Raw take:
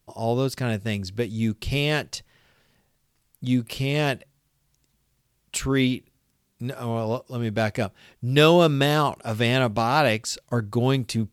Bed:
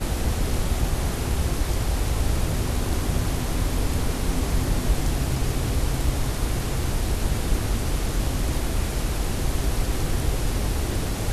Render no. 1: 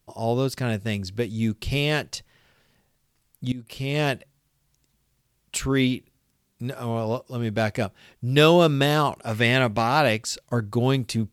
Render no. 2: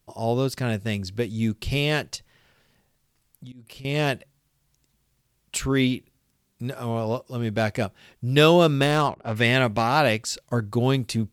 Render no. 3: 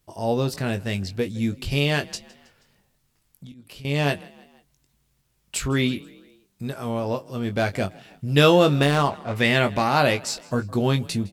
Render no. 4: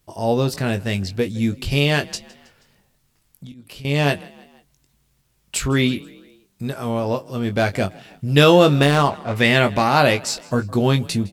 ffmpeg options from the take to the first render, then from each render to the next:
ffmpeg -i in.wav -filter_complex "[0:a]asettb=1/sr,asplit=3[link_01][link_02][link_03];[link_01]atrim=end=9.314[link_04];[link_02]atrim=start=9.31:end=9.89,asetpts=PTS-STARTPTS,afade=type=in:duration=0.004:curve=qsin,afade=type=out:start_time=0.576:duration=0.004:curve=qsin,equalizer=frequency=2000:width=2.7:gain=7.5[link_05];[link_03]atrim=start=9.886[link_06];[link_04][link_05]acrossfade=duration=0.004:curve1=hsin:curve2=qsin[link_07];[link_07][link_06]acrossfade=duration=0.004:curve1=qsin:curve2=hsin,asplit=2[link_08][link_09];[link_08]atrim=end=3.52,asetpts=PTS-STARTPTS,afade=type=out:start_time=3.516:duration=0.004:curve=hsin:silence=0.105925[link_10];[link_09]atrim=start=3.52,asetpts=PTS-STARTPTS,afade=type=in:duration=0.5:silence=0.105925[link_11];[link_10][link_11]concat=n=2:v=0:a=1" out.wav
ffmpeg -i in.wav -filter_complex "[0:a]asettb=1/sr,asplit=3[link_01][link_02][link_03];[link_01]atrim=end=2.164[link_04];[link_02]atrim=start=2.16:end=3.85,asetpts=PTS-STARTPTS,afade=type=in:duration=0.004:curve=qsin,afade=type=out:start_time=1.686:duration=0.004:curve=qsin,acompressor=threshold=-40dB:ratio=5:attack=3.2:release=140:knee=1:detection=peak[link_05];[link_03]atrim=start=3.846[link_06];[link_04][link_05]acrossfade=duration=0.004:curve1=hsin:curve2=qsin[link_07];[link_07][link_06]acrossfade=duration=0.004:curve1=qsin:curve2=hsin,asplit=3[link_08][link_09][link_10];[link_08]afade=type=out:start_time=8.81:duration=0.02[link_11];[link_09]adynamicsmooth=sensitivity=3:basefreq=1200,afade=type=in:start_time=8.81:duration=0.02,afade=type=out:start_time=9.35:duration=0.02[link_12];[link_10]afade=type=in:start_time=9.35:duration=0.02[link_13];[link_11][link_12][link_13]amix=inputs=3:normalize=0" out.wav
ffmpeg -i in.wav -filter_complex "[0:a]asplit=2[link_01][link_02];[link_02]adelay=21,volume=-7.5dB[link_03];[link_01][link_03]amix=inputs=2:normalize=0,asplit=4[link_04][link_05][link_06][link_07];[link_05]adelay=160,afreqshift=31,volume=-23dB[link_08];[link_06]adelay=320,afreqshift=62,volume=-28.7dB[link_09];[link_07]adelay=480,afreqshift=93,volume=-34.4dB[link_10];[link_04][link_08][link_09][link_10]amix=inputs=4:normalize=0" out.wav
ffmpeg -i in.wav -af "volume=4dB,alimiter=limit=-2dB:level=0:latency=1" out.wav

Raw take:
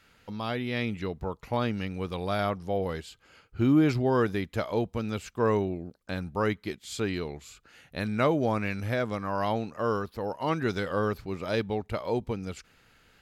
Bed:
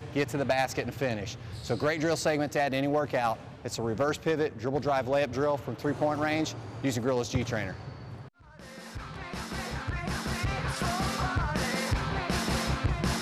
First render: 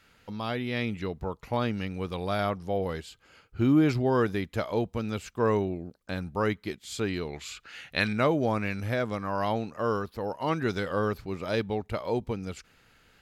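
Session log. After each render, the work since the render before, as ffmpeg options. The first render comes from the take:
ffmpeg -i in.wav -filter_complex "[0:a]asettb=1/sr,asplit=3[link_01][link_02][link_03];[link_01]atrim=end=7.334[link_04];[link_02]atrim=start=7.33:end=8.13,asetpts=PTS-STARTPTS,afade=type=in:duration=0.004:curve=qsin,afade=type=out:start_time=0.796:duration=0.004:curve=qsin,equalizer=frequency=2700:width_type=o:width=2.9:gain=12[link_05];[link_03]atrim=start=8.126[link_06];[link_04][link_05]acrossfade=duration=0.004:curve1=hsin:curve2=qsin[link_07];[link_07][link_06]acrossfade=duration=0.004:curve1=qsin:curve2=hsin" out.wav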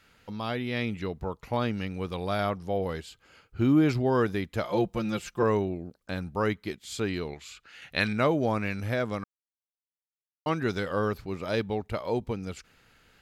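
ffmpeg -i in.wav -filter_complex "[0:a]asettb=1/sr,asplit=3[link_01][link_02][link_03];[link_01]atrim=end=4.644[link_04];[link_02]atrim=start=4.64:end=5.43,asetpts=PTS-STARTPTS,afade=type=in:duration=0.004:curve=qsin,afade=type=out:start_time=0.786:duration=0.004:curve=qsin,aecho=1:1:5.7:0.93,atrim=end_sample=34839[link_05];[link_03]atrim=start=5.426[link_06];[link_04][link_05]acrossfade=duration=0.004:curve1=hsin:curve2=qsin[link_07];[link_07][link_06]acrossfade=duration=0.004:curve1=qsin:curve2=hsin,asplit=5[link_08][link_09][link_10][link_11][link_12];[link_08]atrim=end=7.342[link_13];[link_09]atrim=start=7.338:end=7.822,asetpts=PTS-STARTPTS,volume=-5dB[link_14];[link_10]atrim=start=7.818:end=9.24,asetpts=PTS-STARTPTS,afade=type=out:start_time=1.418:duration=0.004:curve=hsin[link_15];[link_11]atrim=start=9.24:end=10.46,asetpts=PTS-STARTPTS,volume=0[link_16];[link_12]atrim=start=10.46,asetpts=PTS-STARTPTS,afade=type=in:duration=0.004:curve=hsin[link_17];[link_13][link_14]acrossfade=duration=0.004:curve1=hsin:curve2=hsin[link_18];[link_15][link_16][link_17]concat=n=3:v=0:a=1[link_19];[link_18][link_19]acrossfade=duration=0.004:curve1=hsin:curve2=hsin" out.wav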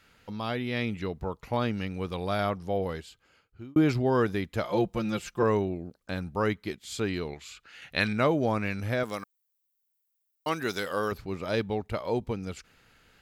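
ffmpeg -i in.wav -filter_complex "[0:a]asettb=1/sr,asplit=3[link_01][link_02][link_03];[link_01]atrim=end=9.034[link_04];[link_02]atrim=start=9.03:end=11.12,asetpts=PTS-STARTPTS,afade=type=in:duration=0.004:curve=qsin,afade=type=out:start_time=2.086:duration=0.004:curve=qsin,aemphasis=mode=production:type=bsi[link_05];[link_03]atrim=start=11.116[link_06];[link_04][link_05]acrossfade=duration=0.004:curve1=hsin:curve2=qsin[link_07];[link_07][link_06]acrossfade=duration=0.004:curve1=qsin:curve2=hsin,asplit=2[link_08][link_09];[link_08]atrim=end=3.76,asetpts=PTS-STARTPTS,afade=type=out:start_time=2.8:duration=0.96[link_10];[link_09]atrim=start=3.76,asetpts=PTS-STARTPTS,afade=type=in:duration=0.004:curve=hsin[link_11];[link_10][link_11]concat=n=2:v=0:a=1" out.wav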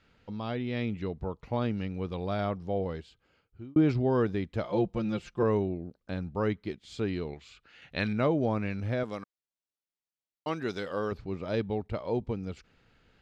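ffmpeg -i in.wav -af "lowpass=3700,equalizer=frequency=1700:width=0.51:gain=-6.5" out.wav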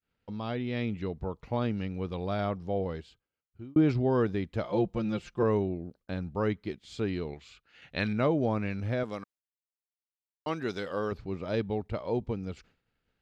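ffmpeg -i in.wav -af "agate=range=-33dB:threshold=-53dB:ratio=3:detection=peak" out.wav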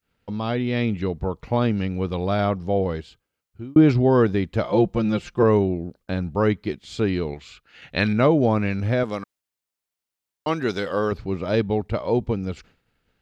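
ffmpeg -i in.wav -af "volume=9dB" out.wav

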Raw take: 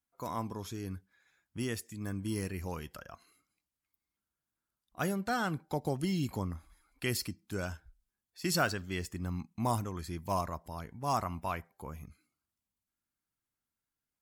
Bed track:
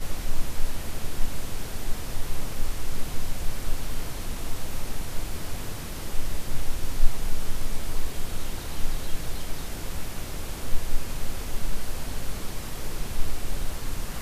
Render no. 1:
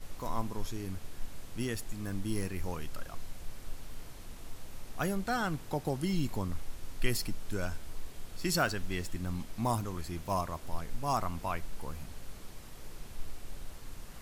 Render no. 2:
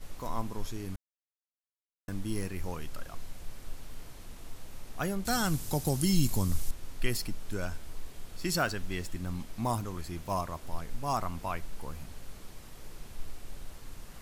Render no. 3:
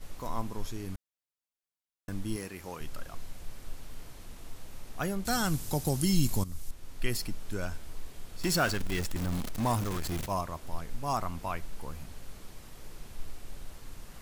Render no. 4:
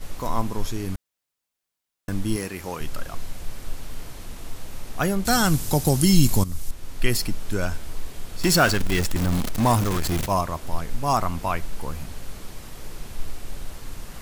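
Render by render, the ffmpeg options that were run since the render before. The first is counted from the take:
ffmpeg -i in.wav -i bed.wav -filter_complex "[1:a]volume=-14.5dB[link_01];[0:a][link_01]amix=inputs=2:normalize=0" out.wav
ffmpeg -i in.wav -filter_complex "[0:a]asettb=1/sr,asplit=3[link_01][link_02][link_03];[link_01]atrim=end=5.254[link_04];[link_02]atrim=start=5.25:end=6.71,asetpts=PTS-STARTPTS,afade=type=in:duration=0.004:curve=qsin,afade=type=out:start_time=1.456:duration=0.004:curve=qsin,bass=frequency=250:gain=7,treble=frequency=4000:gain=15[link_05];[link_03]atrim=start=6.706[link_06];[link_04][link_05]acrossfade=duration=0.004:curve1=hsin:curve2=qsin[link_07];[link_07][link_06]acrossfade=duration=0.004:curve1=qsin:curve2=hsin,asplit=3[link_08][link_09][link_10];[link_08]atrim=end=0.96,asetpts=PTS-STARTPTS,afade=type=out:start_time=0.956:duration=0.004:curve=hsin[link_11];[link_09]atrim=start=0.96:end=2.08,asetpts=PTS-STARTPTS,volume=0[link_12];[link_10]atrim=start=2.08,asetpts=PTS-STARTPTS,afade=type=in:duration=0.004:curve=hsin[link_13];[link_11][link_12][link_13]concat=n=3:v=0:a=1" out.wav
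ffmpeg -i in.wav -filter_complex "[0:a]asettb=1/sr,asplit=3[link_01][link_02][link_03];[link_01]atrim=end=2.364[link_04];[link_02]atrim=start=2.36:end=2.81,asetpts=PTS-STARTPTS,afade=type=in:duration=0.004:curve=qsin,afade=type=out:start_time=0.446:duration=0.004:curve=qsin,highpass=frequency=290:poles=1[link_05];[link_03]atrim=start=2.806[link_06];[link_04][link_05]acrossfade=duration=0.004:curve1=hsin:curve2=qsin[link_07];[link_07][link_06]acrossfade=duration=0.004:curve1=qsin:curve2=hsin,asettb=1/sr,asplit=3[link_08][link_09][link_10];[link_08]atrim=end=8.414[link_11];[link_09]atrim=start=8.41:end=10.26,asetpts=PTS-STARTPTS,afade=type=in:duration=0.004:curve=qsin,afade=type=out:start_time=1.846:duration=0.004:curve=qsin,aeval=exprs='val(0)+0.5*0.0251*sgn(val(0))':channel_layout=same[link_12];[link_10]atrim=start=10.256[link_13];[link_11][link_12]acrossfade=duration=0.004:curve1=hsin:curve2=qsin[link_14];[link_14][link_13]acrossfade=duration=0.004:curve1=qsin:curve2=hsin,asplit=2[link_15][link_16];[link_15]atrim=end=6.44,asetpts=PTS-STARTPTS,afade=type=out:start_time=6.436:duration=0.004:curve=hsin:silence=0.211349[link_17];[link_16]atrim=start=6.44,asetpts=PTS-STARTPTS,afade=type=in:duration=0.71:silence=0.211349[link_18];[link_17][link_18]concat=n=2:v=0:a=1" out.wav
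ffmpeg -i in.wav -af "volume=9.5dB" out.wav

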